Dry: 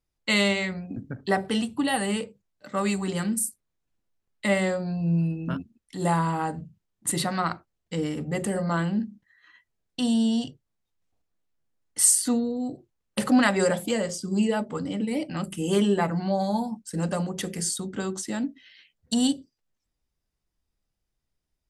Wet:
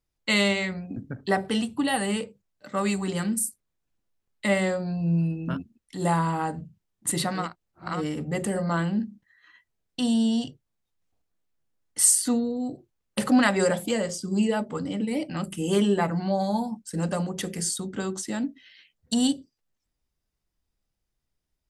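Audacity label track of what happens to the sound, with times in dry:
7.440000	7.950000	reverse, crossfade 0.24 s

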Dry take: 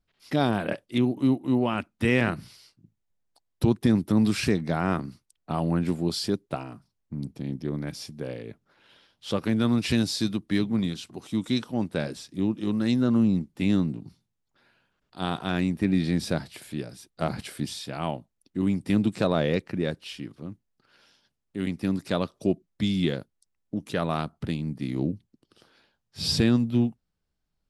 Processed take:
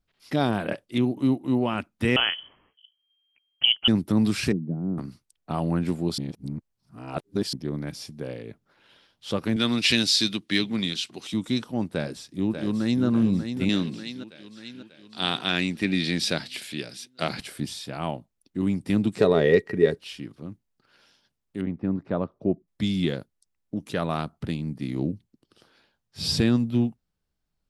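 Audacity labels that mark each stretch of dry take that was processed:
2.160000	3.880000	voice inversion scrambler carrier 3,200 Hz
4.520000	4.980000	flat-topped band-pass 200 Hz, Q 0.94
6.180000	7.530000	reverse
9.560000	11.340000	meter weighting curve D
11.900000	13.050000	delay throw 590 ms, feedback 55%, level −7.5 dB
13.690000	17.400000	meter weighting curve D
19.180000	19.980000	hollow resonant body resonances 420/1,900 Hz, height 18 dB, ringing for 95 ms
21.610000	22.680000	low-pass filter 1,200 Hz

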